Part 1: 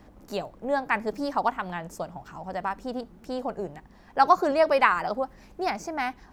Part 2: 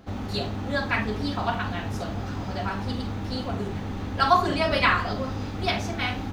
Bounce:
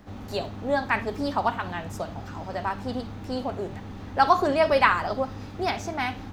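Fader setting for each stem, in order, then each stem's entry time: 0.0, −7.0 decibels; 0.00, 0.00 seconds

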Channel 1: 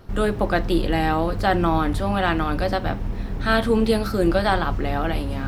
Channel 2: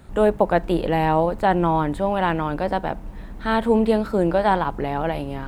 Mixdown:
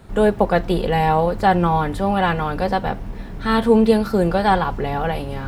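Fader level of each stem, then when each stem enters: −3.0, +1.0 decibels; 0.00, 0.00 seconds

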